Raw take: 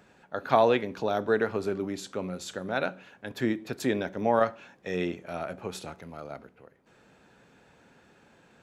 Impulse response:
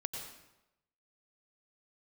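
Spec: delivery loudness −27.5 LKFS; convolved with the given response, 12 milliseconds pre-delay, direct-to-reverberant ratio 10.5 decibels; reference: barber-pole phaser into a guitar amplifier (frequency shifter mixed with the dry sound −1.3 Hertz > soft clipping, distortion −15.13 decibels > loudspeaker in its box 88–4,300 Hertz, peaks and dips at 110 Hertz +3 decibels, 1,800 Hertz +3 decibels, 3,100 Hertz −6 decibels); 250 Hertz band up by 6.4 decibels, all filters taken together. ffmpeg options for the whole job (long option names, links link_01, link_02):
-filter_complex "[0:a]equalizer=frequency=250:width_type=o:gain=8,asplit=2[link_01][link_02];[1:a]atrim=start_sample=2205,adelay=12[link_03];[link_02][link_03]afir=irnorm=-1:irlink=0,volume=-11dB[link_04];[link_01][link_04]amix=inputs=2:normalize=0,asplit=2[link_05][link_06];[link_06]afreqshift=-1.3[link_07];[link_05][link_07]amix=inputs=2:normalize=1,asoftclip=threshold=-17dB,highpass=88,equalizer=frequency=110:width_type=q:width=4:gain=3,equalizer=frequency=1800:width_type=q:width=4:gain=3,equalizer=frequency=3100:width_type=q:width=4:gain=-6,lowpass=frequency=4300:width=0.5412,lowpass=frequency=4300:width=1.3066,volume=3dB"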